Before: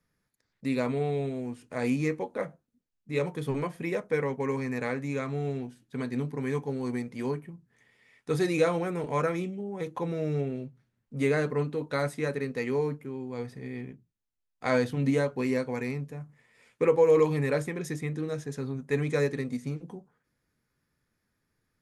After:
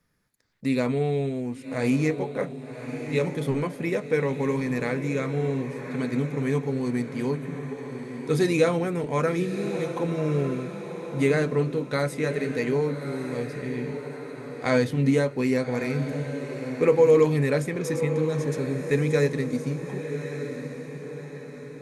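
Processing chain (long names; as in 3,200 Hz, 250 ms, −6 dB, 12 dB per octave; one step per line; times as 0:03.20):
feedback delay with all-pass diffusion 1,162 ms, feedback 45%, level −9 dB
dynamic equaliser 990 Hz, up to −4 dB, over −42 dBFS, Q 0.85
level +5 dB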